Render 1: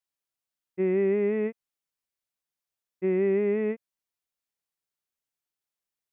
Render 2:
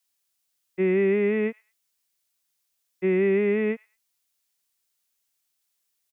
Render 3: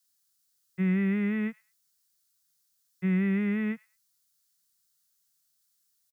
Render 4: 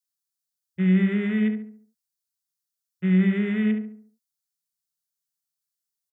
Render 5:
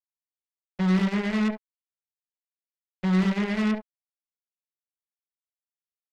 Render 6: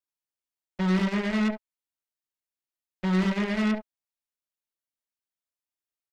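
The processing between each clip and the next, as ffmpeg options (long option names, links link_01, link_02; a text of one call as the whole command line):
ffmpeg -i in.wav -filter_complex "[0:a]highshelf=frequency=2300:gain=11.5,acrossover=split=250|480|930[link_01][link_02][link_03][link_04];[link_03]alimiter=level_in=16dB:limit=-24dB:level=0:latency=1,volume=-16dB[link_05];[link_04]aecho=1:1:107|214:0.075|0.018[link_06];[link_01][link_02][link_05][link_06]amix=inputs=4:normalize=0,volume=3.5dB" out.wav
ffmpeg -i in.wav -af "firequalizer=gain_entry='entry(110,0);entry(160,9);entry(310,-19);entry(520,-13);entry(1400,1);entry(2400,-8);entry(4300,3)':delay=0.05:min_phase=1" out.wav
ffmpeg -i in.wav -filter_complex "[0:a]afwtdn=0.00891,asplit=2[link_01][link_02];[link_02]adelay=70,lowpass=frequency=1500:poles=1,volume=-5dB,asplit=2[link_03][link_04];[link_04]adelay=70,lowpass=frequency=1500:poles=1,volume=0.45,asplit=2[link_05][link_06];[link_06]adelay=70,lowpass=frequency=1500:poles=1,volume=0.45,asplit=2[link_07][link_08];[link_08]adelay=70,lowpass=frequency=1500:poles=1,volume=0.45,asplit=2[link_09][link_10];[link_10]adelay=70,lowpass=frequency=1500:poles=1,volume=0.45,asplit=2[link_11][link_12];[link_12]adelay=70,lowpass=frequency=1500:poles=1,volume=0.45[link_13];[link_01][link_03][link_05][link_07][link_09][link_11][link_13]amix=inputs=7:normalize=0,volume=4dB" out.wav
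ffmpeg -i in.wav -af "acrusher=bits=3:mix=0:aa=0.5,volume=-3dB" out.wav
ffmpeg -i in.wav -af "aecho=1:1:3.2:0.31" out.wav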